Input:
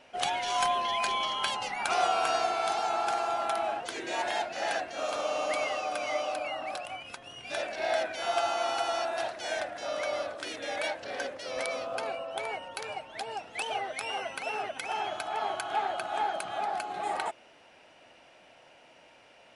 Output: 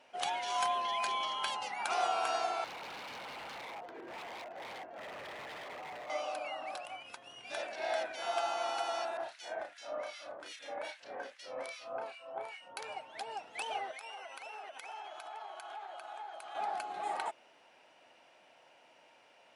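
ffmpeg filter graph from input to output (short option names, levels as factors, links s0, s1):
-filter_complex "[0:a]asettb=1/sr,asplit=3[s0][s1][s2];[s0]atrim=end=2.644[s3];[s1]atrim=start=2.64:end=6.1,asetpts=PTS-STARTPTS,afade=t=in:d=0.004:c=qsin,afade=t=out:st=3.456:d=0.004:c=qsin,lowpass=1100,aeval=exprs='0.0178*(abs(mod(val(0)/0.0178+3,4)-2)-1)':c=same[s4];[s2]atrim=start=6.096[s5];[s3][s4]acrossfade=d=0.004:c1=hsin:c2=qsin[s6];[s6][s5]acrossfade=d=0.004:c1=qsin:c2=hsin,asettb=1/sr,asplit=3[s7][s8][s9];[s7]atrim=end=9.174[s10];[s8]atrim=start=9.17:end=12.77,asetpts=PTS-STARTPTS,afade=t=in:d=0.004:c=qsin,afade=t=out:st=3.596:d=0.004:c=qsin,asplit=2[s11][s12];[s12]adelay=33,volume=0.501[s13];[s11][s13]amix=inputs=2:normalize=0,atrim=end_sample=158760,acrossover=split=1700[s14][s15];[s14]aeval=exprs='val(0)*(1-1/2+1/2*cos(2*PI*2.5*n/s))':c=same[s16];[s15]aeval=exprs='val(0)*(1-1/2-1/2*cos(2*PI*2.5*n/s))':c=same[s17];[s16][s17]amix=inputs=2:normalize=0[s18];[s9]atrim=start=12.766[s19];[s10][s18]acrossfade=d=0.004:c1=hsin:c2=qsin[s20];[s20][s19]acrossfade=d=0.004:c1=qsin:c2=hsin,asettb=1/sr,asplit=3[s21][s22][s23];[s21]atrim=end=13.914[s24];[s22]atrim=start=13.91:end=16.55,asetpts=PTS-STARTPTS,afade=t=in:d=0.004:c=qsin,afade=t=out:st=2.636:d=0.004:c=qsin,highpass=430,acompressor=threshold=0.0141:ratio=10:attack=3.2:release=140:knee=1:detection=peak[s25];[s23]atrim=start=16.546[s26];[s24][s25]acrossfade=d=0.004:c1=hsin:c2=qsin[s27];[s27][s26]acrossfade=d=0.004:c1=qsin:c2=hsin,highpass=f=250:p=1,equalizer=f=920:w=3.1:g=3.5,volume=0.501"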